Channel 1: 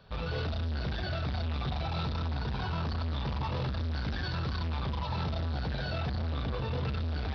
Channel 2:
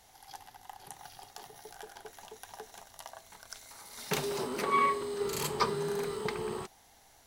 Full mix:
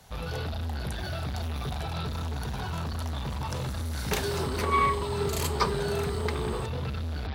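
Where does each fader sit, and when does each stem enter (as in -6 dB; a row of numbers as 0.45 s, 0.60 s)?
0.0 dB, +2.5 dB; 0.00 s, 0.00 s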